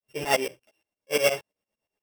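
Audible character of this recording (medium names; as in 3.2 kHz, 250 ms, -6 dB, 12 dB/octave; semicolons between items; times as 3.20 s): a buzz of ramps at a fixed pitch in blocks of 16 samples; tremolo saw up 8.6 Hz, depth 100%; a shimmering, thickened sound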